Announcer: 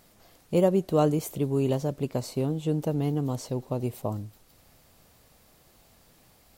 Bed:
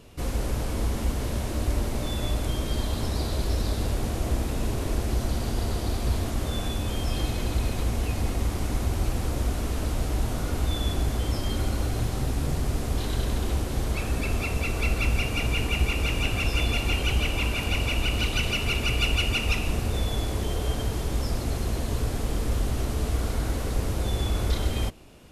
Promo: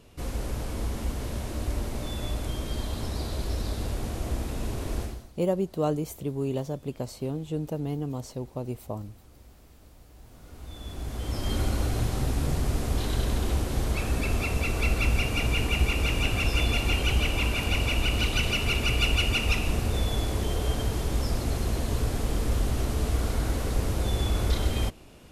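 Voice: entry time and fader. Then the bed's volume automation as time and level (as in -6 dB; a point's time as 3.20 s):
4.85 s, -4.0 dB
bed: 5.03 s -4 dB
5.33 s -26.5 dB
10.12 s -26.5 dB
11.53 s 0 dB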